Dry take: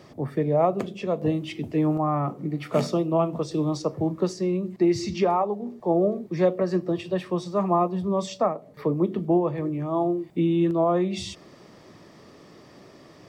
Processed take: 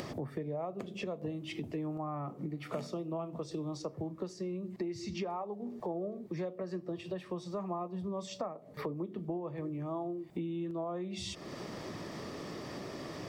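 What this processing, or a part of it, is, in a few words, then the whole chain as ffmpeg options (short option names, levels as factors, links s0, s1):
upward and downward compression: -af "acompressor=mode=upward:threshold=0.0398:ratio=2.5,acompressor=threshold=0.0251:ratio=6,volume=0.668"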